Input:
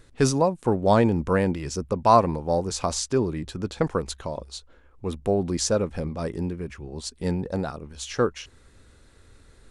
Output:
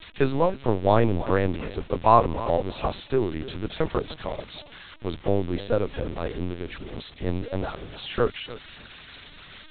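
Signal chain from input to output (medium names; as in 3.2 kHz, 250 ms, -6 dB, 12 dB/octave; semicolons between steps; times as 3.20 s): zero-crossing glitches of -21.5 dBFS; dynamic bell 140 Hz, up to -4 dB, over -40 dBFS, Q 2.2; on a send: thinning echo 297 ms, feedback 18%, high-pass 170 Hz, level -16 dB; on the sum: LPC vocoder at 8 kHz pitch kept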